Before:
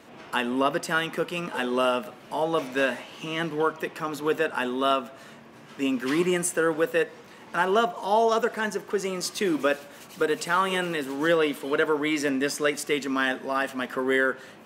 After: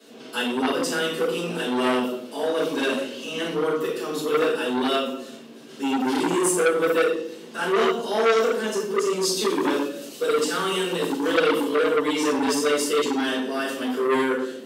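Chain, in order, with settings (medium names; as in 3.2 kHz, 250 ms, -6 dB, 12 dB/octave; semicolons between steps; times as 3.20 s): Bessel high-pass 300 Hz, order 4; high-order bell 1.2 kHz -12.5 dB 2.3 oct; simulated room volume 150 m³, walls mixed, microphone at 5.2 m; transformer saturation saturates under 1.7 kHz; trim -5.5 dB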